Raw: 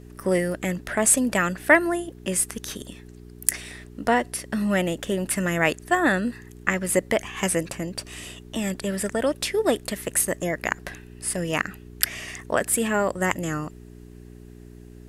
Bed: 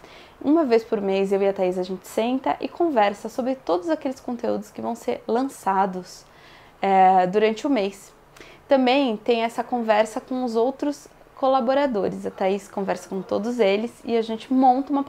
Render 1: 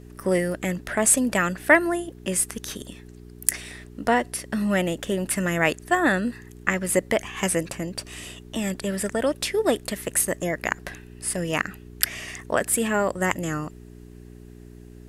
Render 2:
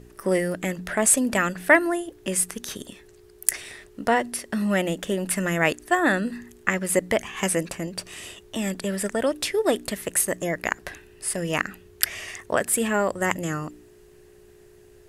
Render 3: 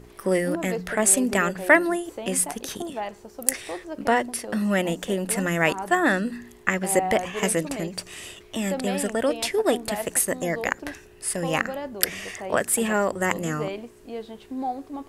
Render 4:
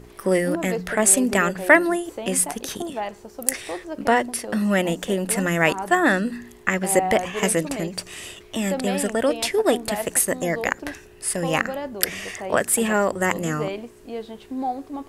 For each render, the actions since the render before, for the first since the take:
nothing audible
de-hum 60 Hz, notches 5
add bed -12.5 dB
gain +2.5 dB; limiter -3 dBFS, peak gain reduction 2.5 dB

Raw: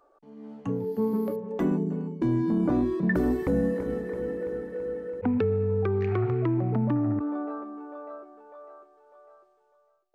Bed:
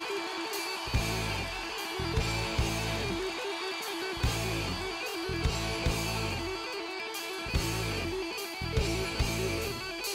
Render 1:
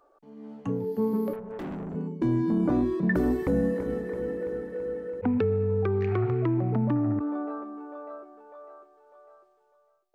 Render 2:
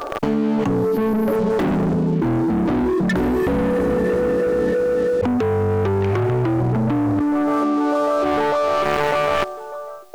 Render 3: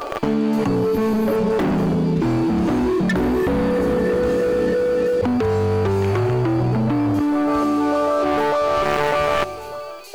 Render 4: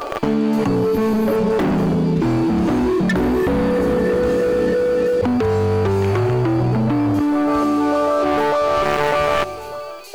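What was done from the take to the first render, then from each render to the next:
1.33–1.95 tube stage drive 33 dB, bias 0.45
sample leveller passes 3; fast leveller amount 100%
add bed -7 dB
gain +1.5 dB; limiter -3 dBFS, peak gain reduction 1.5 dB

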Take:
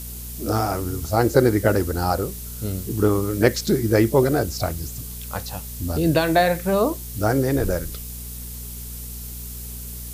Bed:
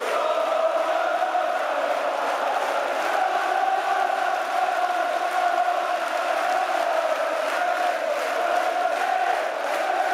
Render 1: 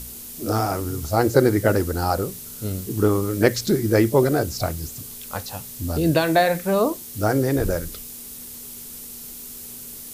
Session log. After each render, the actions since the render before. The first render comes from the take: de-hum 60 Hz, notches 3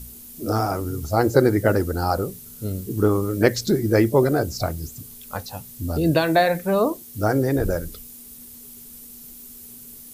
denoiser 8 dB, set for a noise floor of -38 dBFS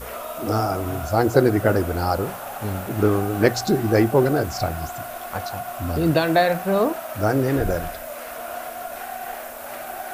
add bed -10 dB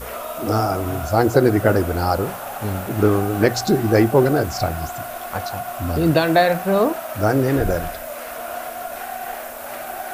gain +2.5 dB; limiter -3 dBFS, peak gain reduction 3 dB

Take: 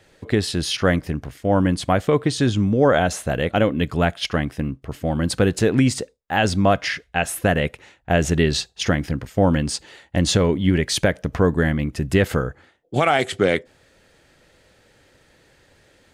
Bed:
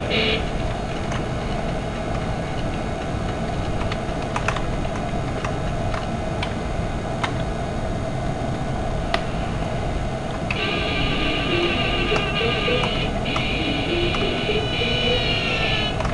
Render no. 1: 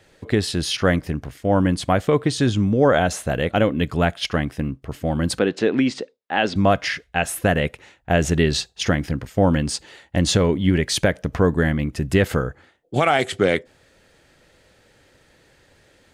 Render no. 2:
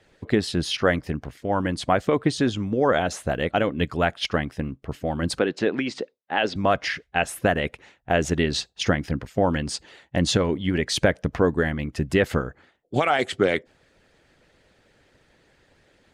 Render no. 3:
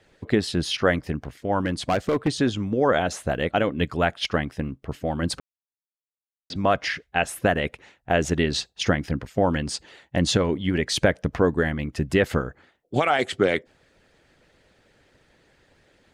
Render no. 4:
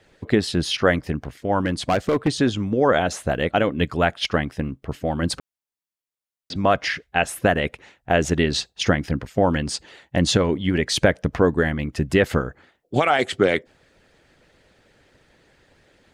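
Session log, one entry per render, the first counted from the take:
5.39–6.56 Chebyshev band-pass 260–3800 Hz
harmonic-percussive split harmonic -10 dB; high shelf 7600 Hz -9.5 dB
1.61–2.28 hard clip -17 dBFS; 5.4–6.5 mute
gain +2.5 dB

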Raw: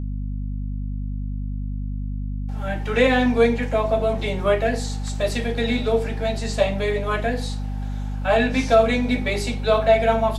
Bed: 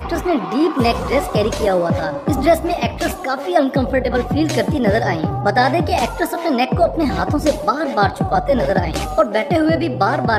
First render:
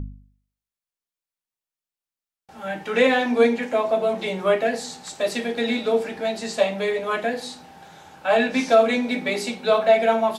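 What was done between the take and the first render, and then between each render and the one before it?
de-hum 50 Hz, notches 6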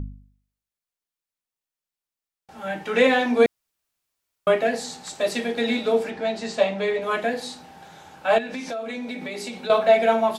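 3.46–4.47 room tone; 6.1–7.02 air absorption 62 m; 8.38–9.7 compressor 5:1, threshold -29 dBFS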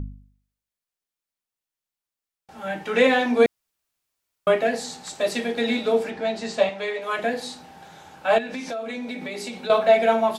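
6.69–7.19 HPF 660 Hz 6 dB/oct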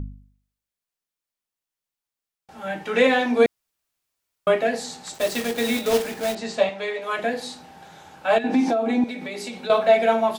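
5.14–6.37 block floating point 3-bit; 8.44–9.04 small resonant body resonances 300/770 Hz, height 18 dB, ringing for 25 ms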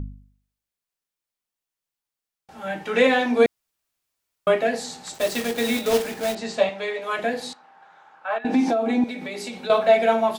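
7.53–8.45 band-pass 1200 Hz, Q 1.8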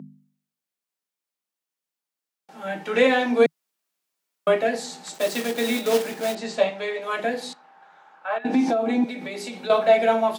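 elliptic high-pass 160 Hz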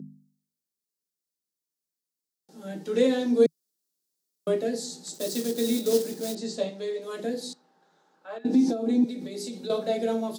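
band shelf 1400 Hz -15.5 dB 2.6 oct; notch 2300 Hz, Q 22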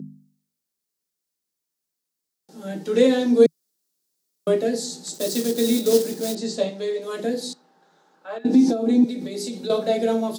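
gain +5.5 dB

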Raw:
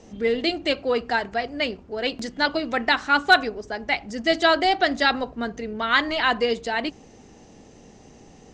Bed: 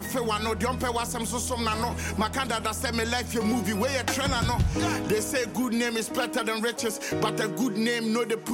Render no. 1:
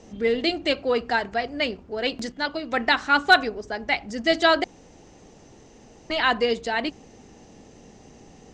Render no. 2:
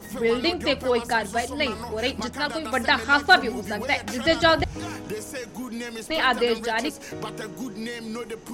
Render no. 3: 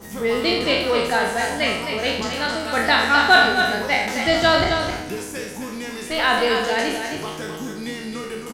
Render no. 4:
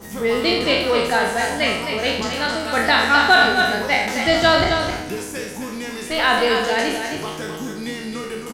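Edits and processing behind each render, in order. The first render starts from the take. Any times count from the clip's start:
2.32–2.72 gain -5 dB; 4.64–6.1 room tone
add bed -7 dB
spectral trails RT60 0.77 s; on a send: echo 0.264 s -6.5 dB
gain +1.5 dB; limiter -3 dBFS, peak gain reduction 3 dB

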